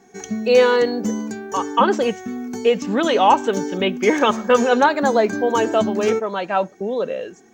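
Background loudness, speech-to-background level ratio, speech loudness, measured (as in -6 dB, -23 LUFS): -27.5 LUFS, 8.5 dB, -19.0 LUFS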